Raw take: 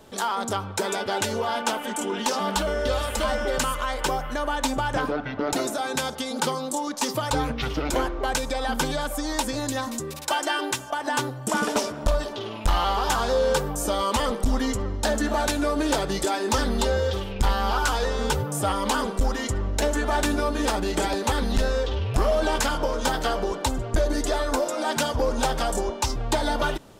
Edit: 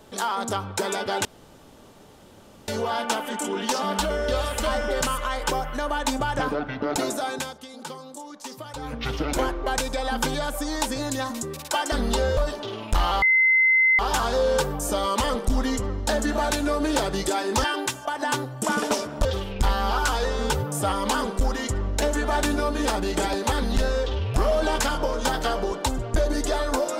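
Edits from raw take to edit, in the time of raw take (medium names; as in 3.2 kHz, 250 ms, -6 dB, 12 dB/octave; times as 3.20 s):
1.25 s: insert room tone 1.43 s
5.84–7.66 s: dip -11.5 dB, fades 0.28 s
10.49–12.10 s: swap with 16.60–17.05 s
12.95 s: add tone 2.06 kHz -15 dBFS 0.77 s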